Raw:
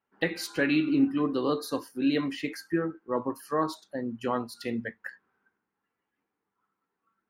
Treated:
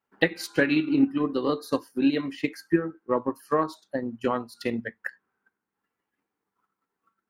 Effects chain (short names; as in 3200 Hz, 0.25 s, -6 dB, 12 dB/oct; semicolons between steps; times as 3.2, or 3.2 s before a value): transient shaper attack +7 dB, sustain -4 dB